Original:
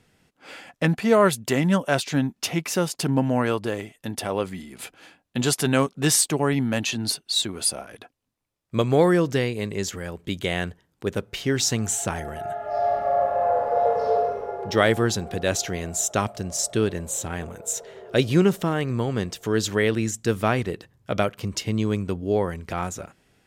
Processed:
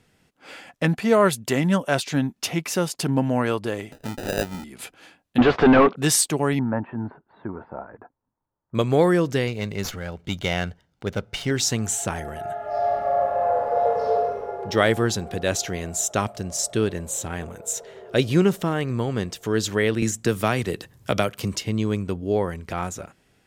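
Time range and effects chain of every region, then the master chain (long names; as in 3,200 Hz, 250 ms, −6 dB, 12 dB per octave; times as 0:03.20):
0:03.92–0:04.64: low-pass filter 5,100 Hz 24 dB per octave + upward compression, threshold −28 dBFS + sample-rate reduction 1,100 Hz
0:05.38–0:05.96: mid-hump overdrive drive 37 dB, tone 1,100 Hz, clips at −5 dBFS + Bessel low-pass filter 2,400 Hz, order 4
0:06.59–0:08.75: Butterworth low-pass 1,600 Hz + parametric band 910 Hz +11 dB 0.22 octaves
0:09.47–0:11.51: high shelf with overshoot 7,600 Hz −9 dB, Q 1.5 + comb filter 1.4 ms, depth 37% + windowed peak hold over 3 samples
0:20.02–0:21.56: high-shelf EQ 4,300 Hz +7.5 dB + multiband upward and downward compressor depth 70%
whole clip: no processing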